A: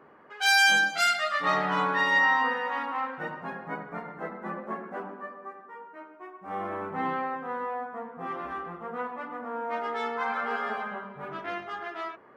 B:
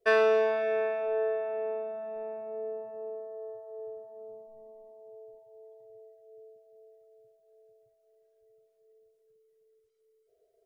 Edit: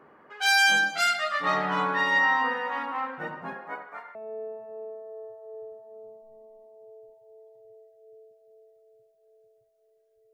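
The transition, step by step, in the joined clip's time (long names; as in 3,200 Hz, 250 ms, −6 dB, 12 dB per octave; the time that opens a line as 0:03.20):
A
0:03.54–0:04.15: high-pass filter 290 Hz → 1,300 Hz
0:04.15: continue with B from 0:02.40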